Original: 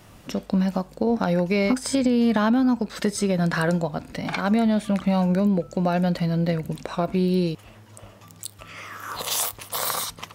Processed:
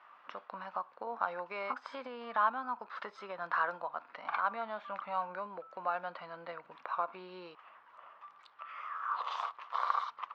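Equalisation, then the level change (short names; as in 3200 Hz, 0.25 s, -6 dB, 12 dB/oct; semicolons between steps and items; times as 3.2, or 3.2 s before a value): dynamic EQ 1900 Hz, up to -6 dB, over -45 dBFS, Q 2; ladder band-pass 1300 Hz, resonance 55%; air absorption 200 m; +7.0 dB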